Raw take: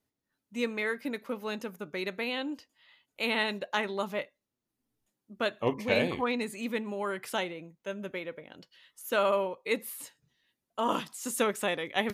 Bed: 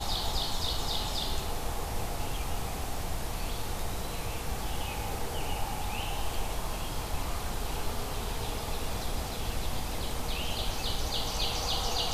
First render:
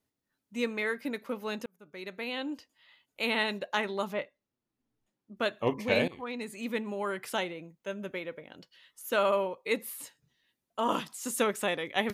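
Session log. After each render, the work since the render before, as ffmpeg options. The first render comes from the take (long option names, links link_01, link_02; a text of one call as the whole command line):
ffmpeg -i in.wav -filter_complex "[0:a]asettb=1/sr,asplit=3[link_01][link_02][link_03];[link_01]atrim=end=4.134[link_04];[link_02]atrim=start=4.13:end=5.37,asetpts=PTS-STARTPTS,afade=type=in:duration=0.004:curve=qsin,afade=type=out:start_time=1.236:duration=0.004:curve=qsin,aemphasis=mode=reproduction:type=50fm[link_05];[link_03]atrim=start=5.366[link_06];[link_04][link_05]acrossfade=duration=0.004:curve1=hsin:curve2=qsin[link_07];[link_07][link_06]acrossfade=duration=0.004:curve1=qsin:curve2=hsin,asplit=3[link_08][link_09][link_10];[link_08]atrim=end=1.66,asetpts=PTS-STARTPTS,afade=type=out:start_time=1.656:duration=0.004:curve=hsin[link_11];[link_09]atrim=start=1.66:end=6.08,asetpts=PTS-STARTPTS,afade=type=in:duration=0.86,afade=type=out:start_time=4.416:duration=0.004:curve=hsin:silence=0.149624[link_12];[link_10]atrim=start=6.08,asetpts=PTS-STARTPTS,afade=type=in:duration=0.68:silence=0.149624[link_13];[link_11][link_12][link_13]concat=n=3:v=0:a=1" out.wav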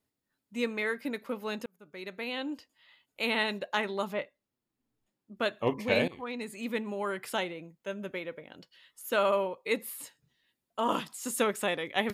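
ffmpeg -i in.wav -af "bandreject=frequency=6000:width=14" out.wav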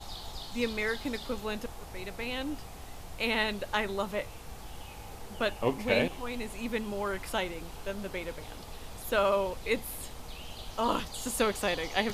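ffmpeg -i in.wav -i bed.wav -filter_complex "[1:a]volume=-10.5dB[link_01];[0:a][link_01]amix=inputs=2:normalize=0" out.wav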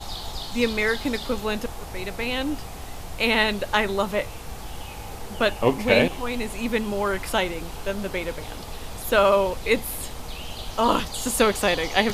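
ffmpeg -i in.wav -af "volume=8.5dB" out.wav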